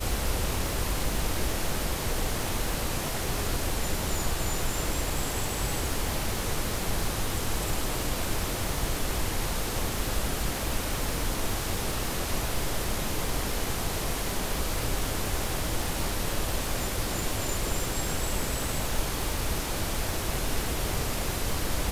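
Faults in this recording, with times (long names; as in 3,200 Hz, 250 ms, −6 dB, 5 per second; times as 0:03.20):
surface crackle 270 per second −33 dBFS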